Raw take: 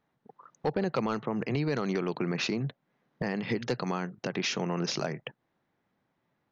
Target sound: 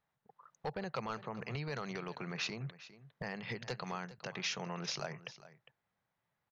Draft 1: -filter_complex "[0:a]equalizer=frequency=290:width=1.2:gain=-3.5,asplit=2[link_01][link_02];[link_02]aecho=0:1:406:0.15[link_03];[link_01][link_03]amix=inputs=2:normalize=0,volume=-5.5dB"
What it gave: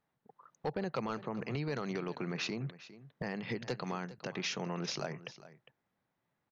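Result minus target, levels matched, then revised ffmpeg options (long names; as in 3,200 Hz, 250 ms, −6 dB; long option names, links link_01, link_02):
250 Hz band +3.5 dB
-filter_complex "[0:a]equalizer=frequency=290:width=1.2:gain=-13.5,asplit=2[link_01][link_02];[link_02]aecho=0:1:406:0.15[link_03];[link_01][link_03]amix=inputs=2:normalize=0,volume=-5.5dB"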